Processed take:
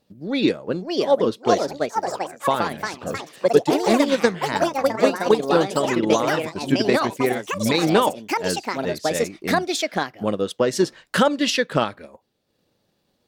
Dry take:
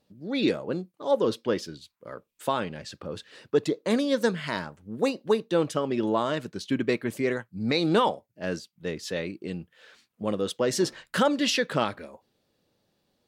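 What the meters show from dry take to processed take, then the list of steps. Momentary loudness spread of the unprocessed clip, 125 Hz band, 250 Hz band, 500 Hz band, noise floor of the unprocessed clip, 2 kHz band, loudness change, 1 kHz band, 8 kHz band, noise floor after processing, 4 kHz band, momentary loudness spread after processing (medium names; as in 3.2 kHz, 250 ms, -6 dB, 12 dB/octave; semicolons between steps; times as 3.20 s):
15 LU, +5.0 dB, +5.5 dB, +7.0 dB, -77 dBFS, +7.5 dB, +6.0 dB, +9.0 dB, +7.5 dB, -70 dBFS, +6.0 dB, 7 LU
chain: ever faster or slower copies 634 ms, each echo +4 st, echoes 3; transient shaper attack +4 dB, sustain -5 dB; trim +3.5 dB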